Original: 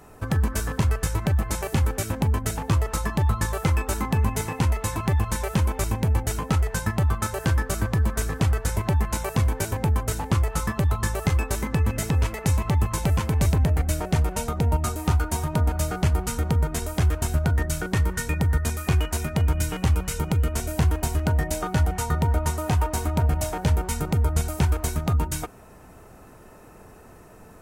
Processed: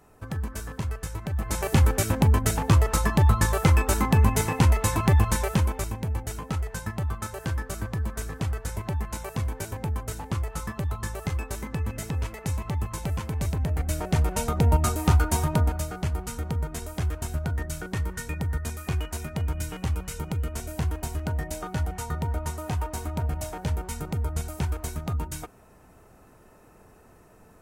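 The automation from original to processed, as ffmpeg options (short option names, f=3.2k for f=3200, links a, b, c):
-af "volume=12dB,afade=t=in:st=1.31:d=0.45:silence=0.266073,afade=t=out:st=5.24:d=0.69:silence=0.316228,afade=t=in:st=13.58:d=1.11:silence=0.354813,afade=t=out:st=15.46:d=0.4:silence=0.375837"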